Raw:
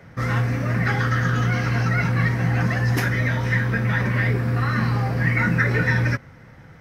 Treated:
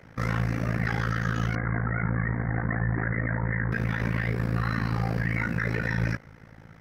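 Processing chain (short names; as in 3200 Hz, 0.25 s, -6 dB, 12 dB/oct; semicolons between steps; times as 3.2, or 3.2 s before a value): 1.55–3.72 steep low-pass 2100 Hz 96 dB/oct; limiter -15.5 dBFS, peak gain reduction 8.5 dB; AM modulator 55 Hz, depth 90%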